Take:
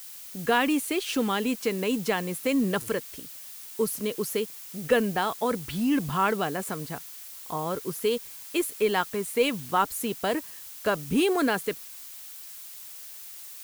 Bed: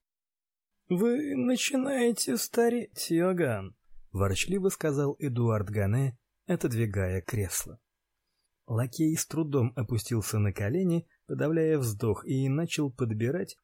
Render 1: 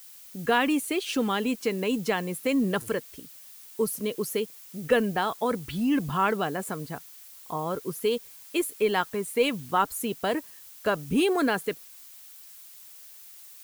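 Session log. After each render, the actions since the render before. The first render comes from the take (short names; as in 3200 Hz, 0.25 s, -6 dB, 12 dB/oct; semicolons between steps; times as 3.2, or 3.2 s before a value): denoiser 6 dB, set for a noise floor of -43 dBFS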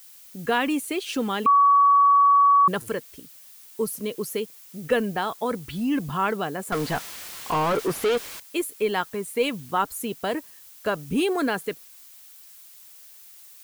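1.46–2.68 bleep 1130 Hz -13 dBFS; 6.72–8.4 overdrive pedal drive 31 dB, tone 2200 Hz, clips at -15 dBFS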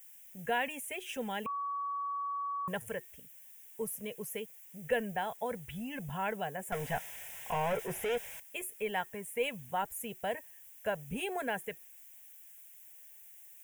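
fixed phaser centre 1200 Hz, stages 6; resonator 370 Hz, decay 0.22 s, harmonics odd, mix 50%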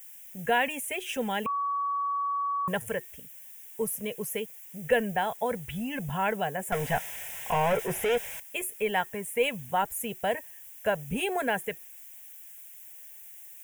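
gain +7 dB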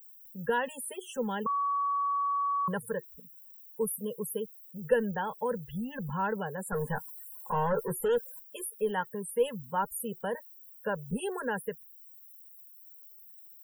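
fixed phaser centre 460 Hz, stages 8; loudest bins only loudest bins 64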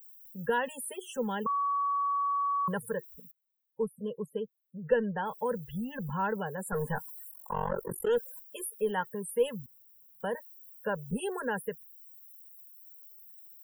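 3.31–5.26 air absorption 150 m; 7.31–8.07 AM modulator 46 Hz, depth 100%; 9.66–10.2 room tone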